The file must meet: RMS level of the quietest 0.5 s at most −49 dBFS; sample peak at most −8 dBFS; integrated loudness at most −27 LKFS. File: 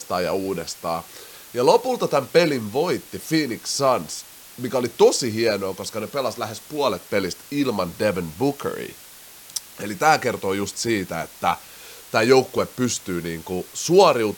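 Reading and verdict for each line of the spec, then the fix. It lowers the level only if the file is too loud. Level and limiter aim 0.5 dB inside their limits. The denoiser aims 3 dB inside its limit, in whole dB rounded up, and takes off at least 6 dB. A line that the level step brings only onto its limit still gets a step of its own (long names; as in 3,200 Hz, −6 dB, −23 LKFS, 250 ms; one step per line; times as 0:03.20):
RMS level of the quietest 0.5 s −44 dBFS: out of spec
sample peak −3.0 dBFS: out of spec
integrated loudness −22.5 LKFS: out of spec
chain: broadband denoise 6 dB, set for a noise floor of −44 dBFS
level −5 dB
brickwall limiter −8.5 dBFS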